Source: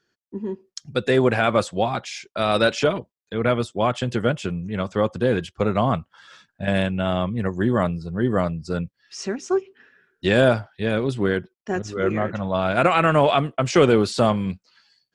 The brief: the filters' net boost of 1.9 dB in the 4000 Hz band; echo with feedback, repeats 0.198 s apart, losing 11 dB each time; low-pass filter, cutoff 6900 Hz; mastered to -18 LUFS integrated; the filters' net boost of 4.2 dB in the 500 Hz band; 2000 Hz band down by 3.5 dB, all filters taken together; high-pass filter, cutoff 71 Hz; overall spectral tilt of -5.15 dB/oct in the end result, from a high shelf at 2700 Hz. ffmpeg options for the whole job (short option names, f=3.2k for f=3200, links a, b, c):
-af "highpass=71,lowpass=6.9k,equalizer=f=500:t=o:g=5.5,equalizer=f=2k:t=o:g=-5.5,highshelf=f=2.7k:g=-4.5,equalizer=f=4k:t=o:g=8,aecho=1:1:198|396|594:0.282|0.0789|0.0221,volume=1.5dB"